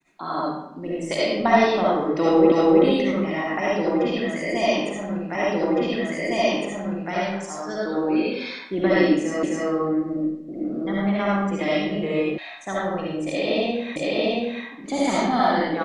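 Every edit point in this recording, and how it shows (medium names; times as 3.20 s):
2.52 s: repeat of the last 0.32 s
5.35 s: repeat of the last 1.76 s
9.43 s: repeat of the last 0.26 s
12.38 s: sound stops dead
13.96 s: repeat of the last 0.68 s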